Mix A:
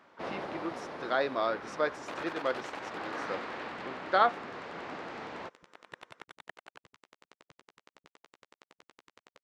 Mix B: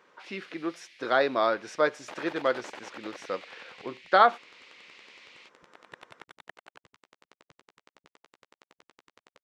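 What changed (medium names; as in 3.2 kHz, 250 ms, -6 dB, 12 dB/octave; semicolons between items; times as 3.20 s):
speech +5.5 dB; first sound: add steep high-pass 2.1 kHz 48 dB/octave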